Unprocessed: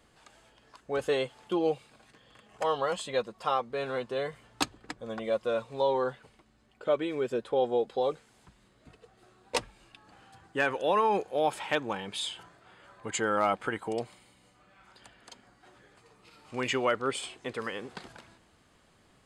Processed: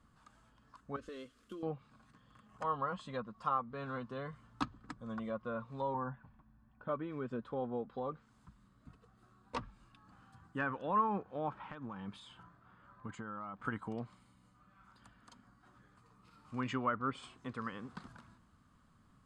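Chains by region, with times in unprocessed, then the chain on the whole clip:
0.96–1.63 s: CVSD coder 64 kbps + compression 3:1, threshold -32 dBFS + static phaser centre 350 Hz, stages 4
5.94–6.89 s: low-pass that closes with the level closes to 1.6 kHz, closed at -26 dBFS + low-pass 2.1 kHz + comb 1.2 ms, depth 52%
11.53–13.65 s: compression 12:1, threshold -33 dBFS + low-pass 2.4 kHz 6 dB/octave
whole clip: resonant high shelf 1.5 kHz -11.5 dB, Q 1.5; low-pass that closes with the level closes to 2 kHz, closed at -24 dBFS; high-order bell 550 Hz -14 dB

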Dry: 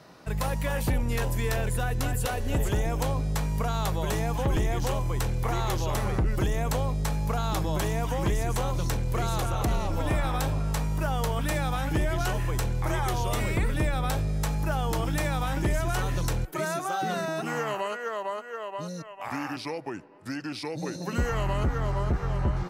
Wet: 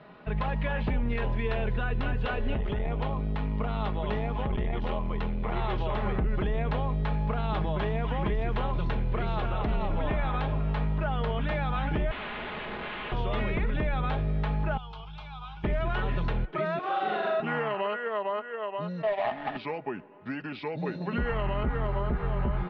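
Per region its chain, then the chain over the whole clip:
2.54–5.56 s: band-stop 1.6 kHz, Q 10 + transformer saturation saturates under 130 Hz
12.11–13.12 s: careless resampling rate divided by 8×, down none, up hold + integer overflow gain 32 dB
14.77–15.64 s: amplifier tone stack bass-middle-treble 10-0-10 + static phaser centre 370 Hz, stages 8
16.79–17.40 s: CVSD coder 64 kbps + Chebyshev band-pass 400–5200 Hz + flutter echo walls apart 7.2 m, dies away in 1.1 s
19.03–19.57 s: square wave that keeps the level + compressor with a negative ratio -33 dBFS, ratio -0.5 + small resonant body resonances 680/1800 Hz, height 16 dB, ringing for 30 ms
whole clip: steep low-pass 3.4 kHz 36 dB/octave; comb 4.8 ms, depth 45%; peak limiter -20 dBFS

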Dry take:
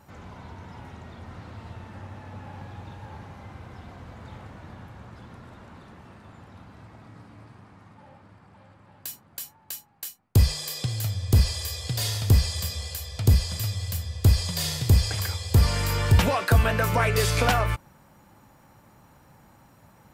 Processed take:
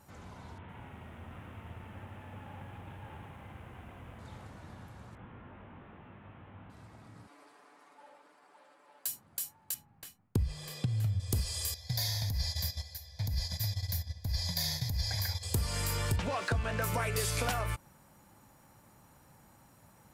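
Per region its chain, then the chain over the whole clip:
0.58–4.19 s: CVSD coder 16 kbps + bit-crushed delay 109 ms, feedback 80%, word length 10-bit, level -14 dB
5.15–6.70 s: one-bit delta coder 16 kbps, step -55 dBFS + doubling 20 ms -5.5 dB
7.27–9.08 s: high-pass 340 Hz 24 dB/octave + comb 6.9 ms, depth 68%
9.74–11.20 s: tone controls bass +10 dB, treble -14 dB + compression 2:1, threshold -13 dBFS
11.74–15.43 s: gate -32 dBFS, range -11 dB + static phaser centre 1.9 kHz, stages 8 + compressor with a negative ratio -22 dBFS
16.16–16.82 s: zero-crossing glitches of -25.5 dBFS + distance through air 120 m
whole clip: peaking EQ 10 kHz +8.5 dB 1.3 oct; compression 4:1, threshold -23 dBFS; trim -6 dB

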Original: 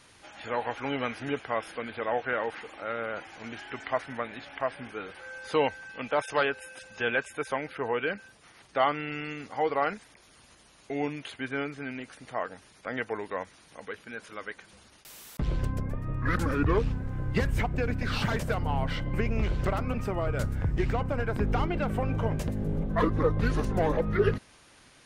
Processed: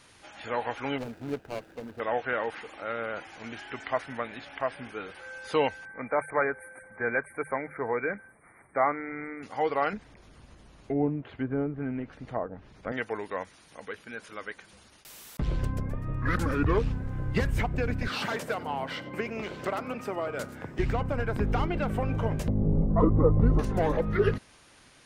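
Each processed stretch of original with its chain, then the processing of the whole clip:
0.98–2.00 s: median filter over 41 samples + band-stop 1.1 kHz, Q 16
5.85–9.43 s: brick-wall FIR band-stop 2.4–8.1 kHz + treble shelf 6 kHz -5 dB + hum notches 50/100/150 Hz
9.93–12.92 s: low-pass that closes with the level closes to 880 Hz, closed at -30.5 dBFS + tilt EQ -3 dB/octave + upward compressor, threshold -48 dBFS
18.08–20.79 s: high-pass 270 Hz + delay 95 ms -19 dB
22.48–23.59 s: Savitzky-Golay filter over 65 samples + bass shelf 410 Hz +6 dB
whole clip: none

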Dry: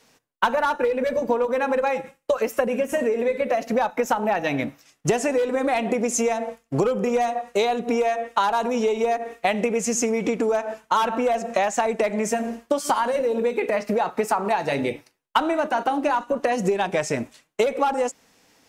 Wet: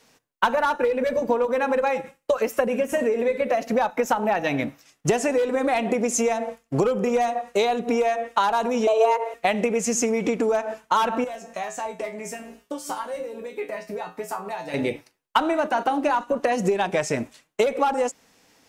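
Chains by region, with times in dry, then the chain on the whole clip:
8.87–9.34 s: peaking EQ 240 Hz +14.5 dB 0.6 oct + frequency shift +220 Hz
11.24–14.74 s: treble shelf 8.3 kHz +7 dB + feedback comb 59 Hz, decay 0.25 s, harmonics odd, mix 90%
whole clip: none

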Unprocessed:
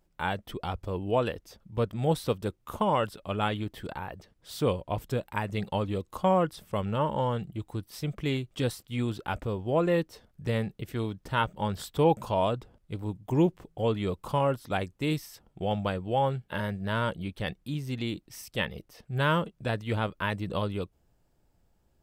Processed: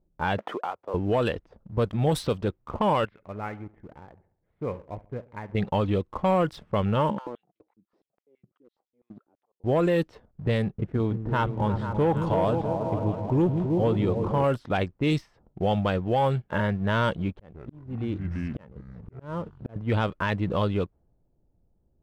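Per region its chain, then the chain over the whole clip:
0.38–0.94 s: high-pass 660 Hz + three bands compressed up and down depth 100%
3.05–5.55 s: four-pole ladder low-pass 2.3 kHz, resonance 75% + feedback delay 69 ms, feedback 55%, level -16 dB
7.10–9.64 s: compression 8:1, threshold -40 dBFS + slow attack 536 ms + step-sequenced high-pass 12 Hz 200–5300 Hz
10.62–14.44 s: treble shelf 2 kHz -11 dB + delay with an opening low-pass 162 ms, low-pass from 200 Hz, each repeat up 2 oct, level -6 dB
17.31–19.76 s: ever faster or slower copies 106 ms, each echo -5 st, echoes 3, each echo -6 dB + slow attack 620 ms
whole clip: level-controlled noise filter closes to 510 Hz, open at -21 dBFS; waveshaping leveller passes 1; peak limiter -19 dBFS; trim +3 dB

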